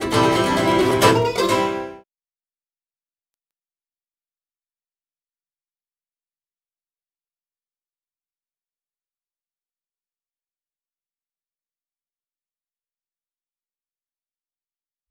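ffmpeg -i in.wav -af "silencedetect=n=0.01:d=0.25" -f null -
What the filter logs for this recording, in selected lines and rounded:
silence_start: 2.01
silence_end: 15.10 | silence_duration: 13.09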